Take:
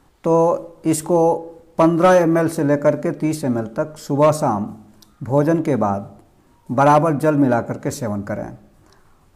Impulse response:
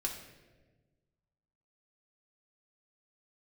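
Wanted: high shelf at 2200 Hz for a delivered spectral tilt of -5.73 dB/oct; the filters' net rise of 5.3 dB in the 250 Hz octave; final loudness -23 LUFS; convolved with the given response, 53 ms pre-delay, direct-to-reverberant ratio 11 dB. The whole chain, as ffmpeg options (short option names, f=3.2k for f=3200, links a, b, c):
-filter_complex "[0:a]equalizer=f=250:t=o:g=7,highshelf=f=2.2k:g=6,asplit=2[a][b];[1:a]atrim=start_sample=2205,adelay=53[c];[b][c]afir=irnorm=-1:irlink=0,volume=-13dB[d];[a][d]amix=inputs=2:normalize=0,volume=-8.5dB"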